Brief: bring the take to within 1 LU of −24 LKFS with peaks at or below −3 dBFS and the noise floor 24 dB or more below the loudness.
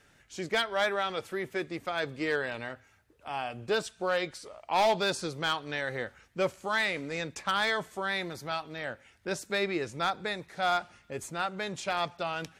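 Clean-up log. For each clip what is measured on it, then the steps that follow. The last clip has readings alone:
share of clipped samples 0.4%; peaks flattened at −20.0 dBFS; integrated loudness −31.5 LKFS; sample peak −20.0 dBFS; target loudness −24.0 LKFS
→ clipped peaks rebuilt −20 dBFS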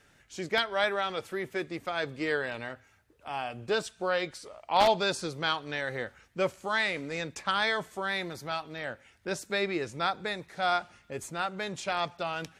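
share of clipped samples 0.0%; integrated loudness −31.0 LKFS; sample peak −11.0 dBFS; target loudness −24.0 LKFS
→ level +7 dB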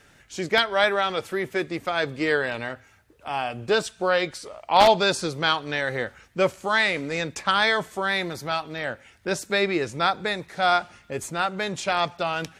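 integrated loudness −24.0 LKFS; sample peak −4.0 dBFS; background noise floor −56 dBFS

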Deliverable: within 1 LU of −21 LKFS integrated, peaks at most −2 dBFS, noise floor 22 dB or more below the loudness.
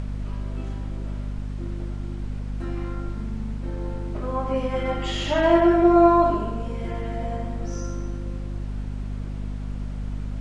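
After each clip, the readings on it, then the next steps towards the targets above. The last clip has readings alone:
mains hum 50 Hz; hum harmonics up to 250 Hz; level of the hum −27 dBFS; background noise floor −32 dBFS; target noise floor −48 dBFS; integrated loudness −25.5 LKFS; sample peak −5.5 dBFS; target loudness −21.0 LKFS
→ hum removal 50 Hz, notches 5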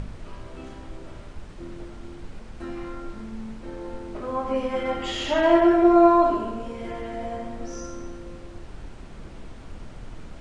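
mains hum none found; background noise floor −42 dBFS; target noise floor −45 dBFS
→ noise reduction from a noise print 6 dB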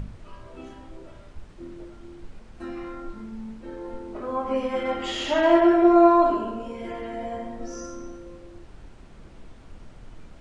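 background noise floor −47 dBFS; integrated loudness −22.0 LKFS; sample peak −5.5 dBFS; target loudness −21.0 LKFS
→ level +1 dB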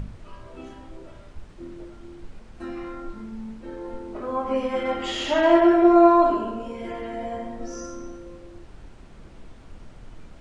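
integrated loudness −21.0 LKFS; sample peak −4.5 dBFS; background noise floor −46 dBFS

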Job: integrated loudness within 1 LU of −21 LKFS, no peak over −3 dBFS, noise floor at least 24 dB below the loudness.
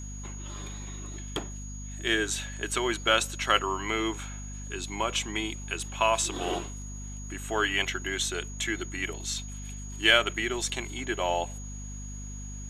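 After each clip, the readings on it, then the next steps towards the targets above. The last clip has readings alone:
mains hum 50 Hz; hum harmonics up to 250 Hz; level of the hum −37 dBFS; interfering tone 6,700 Hz; level of the tone −44 dBFS; integrated loudness −29.0 LKFS; sample peak −5.5 dBFS; target loudness −21.0 LKFS
→ mains-hum notches 50/100/150/200/250 Hz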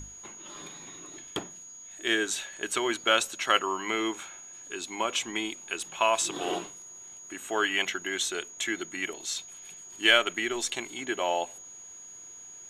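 mains hum none found; interfering tone 6,700 Hz; level of the tone −44 dBFS
→ notch filter 6,700 Hz, Q 30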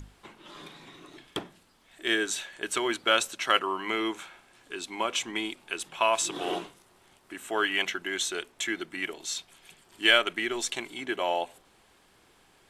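interfering tone none found; integrated loudness −29.0 LKFS; sample peak −6.0 dBFS; target loudness −21.0 LKFS
→ level +8 dB
brickwall limiter −3 dBFS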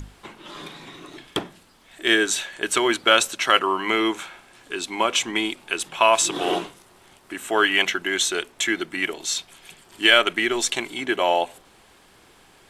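integrated loudness −21.5 LKFS; sample peak −3.0 dBFS; background noise floor −54 dBFS

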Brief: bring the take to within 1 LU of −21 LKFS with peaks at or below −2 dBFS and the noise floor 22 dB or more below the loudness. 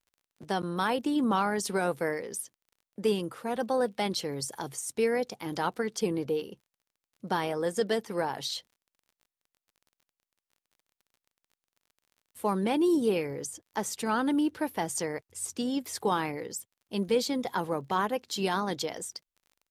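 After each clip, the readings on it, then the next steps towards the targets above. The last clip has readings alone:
crackle rate 28 per second; integrated loudness −30.5 LKFS; sample peak −16.0 dBFS; target loudness −21.0 LKFS
→ click removal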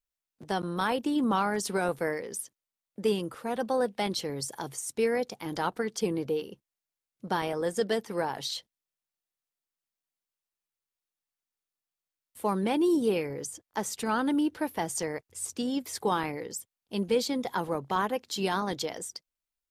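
crackle rate 0 per second; integrated loudness −30.5 LKFS; sample peak −16.0 dBFS; target loudness −21.0 LKFS
→ level +9.5 dB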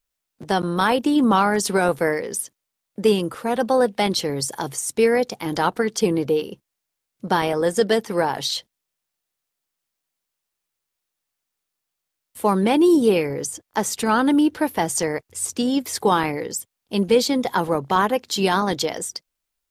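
integrated loudness −21.0 LKFS; sample peak −6.5 dBFS; background noise floor −82 dBFS

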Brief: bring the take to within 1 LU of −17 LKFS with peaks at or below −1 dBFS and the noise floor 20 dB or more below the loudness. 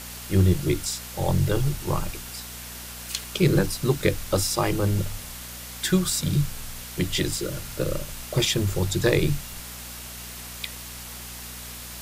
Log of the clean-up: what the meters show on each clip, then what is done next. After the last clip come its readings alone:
mains hum 60 Hz; hum harmonics up to 240 Hz; level of the hum −43 dBFS; background noise floor −39 dBFS; target noise floor −47 dBFS; integrated loudness −26.5 LKFS; sample peak −6.5 dBFS; target loudness −17.0 LKFS
→ hum removal 60 Hz, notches 4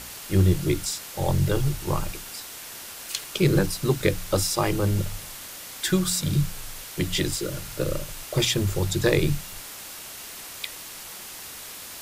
mains hum none found; background noise floor −40 dBFS; target noise floor −46 dBFS
→ broadband denoise 6 dB, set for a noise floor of −40 dBFS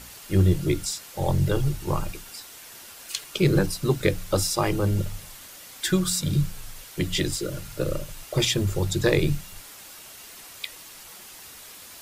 background noise floor −45 dBFS; target noise floor −46 dBFS
→ broadband denoise 6 dB, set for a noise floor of −45 dBFS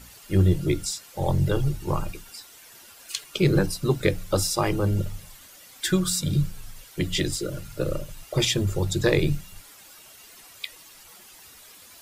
background noise floor −49 dBFS; integrated loudness −25.5 LKFS; sample peak −7.0 dBFS; target loudness −17.0 LKFS
→ level +8.5 dB
brickwall limiter −1 dBFS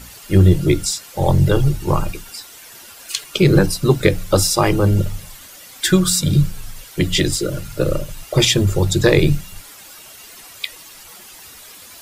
integrated loudness −17.0 LKFS; sample peak −1.0 dBFS; background noise floor −41 dBFS

